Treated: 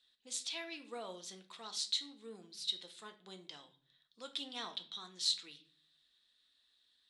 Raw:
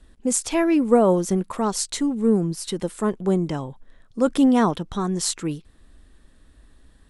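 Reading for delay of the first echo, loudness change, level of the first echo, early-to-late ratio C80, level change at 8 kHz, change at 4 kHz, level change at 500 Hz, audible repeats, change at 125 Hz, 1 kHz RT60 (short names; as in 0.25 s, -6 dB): none, -18.0 dB, none, 18.0 dB, -17.0 dB, -2.5 dB, -29.5 dB, none, -37.5 dB, 0.40 s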